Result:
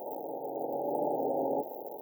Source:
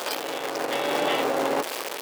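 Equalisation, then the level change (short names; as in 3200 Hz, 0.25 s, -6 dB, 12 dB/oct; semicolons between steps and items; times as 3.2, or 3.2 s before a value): brick-wall FIR band-stop 920–14000 Hz; -5.5 dB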